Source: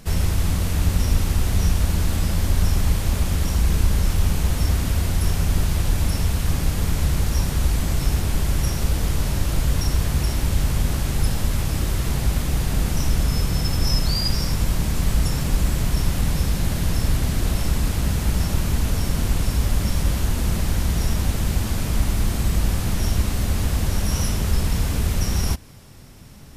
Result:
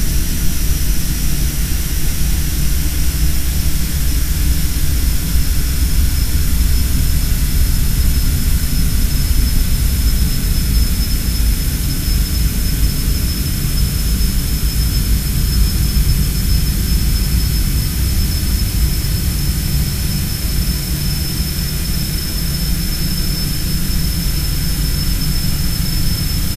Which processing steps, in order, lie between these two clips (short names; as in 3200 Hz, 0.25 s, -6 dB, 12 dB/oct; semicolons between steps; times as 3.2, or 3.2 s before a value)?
high shelf 9300 Hz +9 dB; loudspeakers at several distances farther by 41 m -1 dB, 79 m -9 dB; Paulstretch 45×, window 0.25 s, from 13.13; band shelf 710 Hz -8.5 dB; gain +2 dB